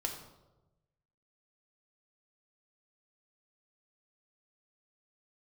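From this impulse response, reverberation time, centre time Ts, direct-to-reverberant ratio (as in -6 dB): 1.1 s, 26 ms, 2.0 dB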